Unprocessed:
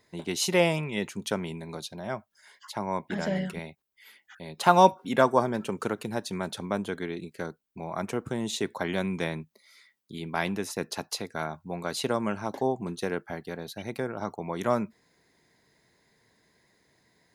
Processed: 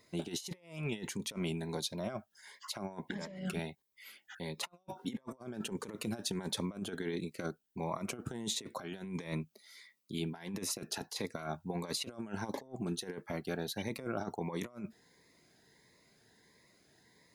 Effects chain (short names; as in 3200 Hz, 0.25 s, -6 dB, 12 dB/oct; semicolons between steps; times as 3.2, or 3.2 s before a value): low shelf 140 Hz -4.5 dB; negative-ratio compressor -35 dBFS, ratio -0.5; cascading phaser rising 1.5 Hz; gain -3.5 dB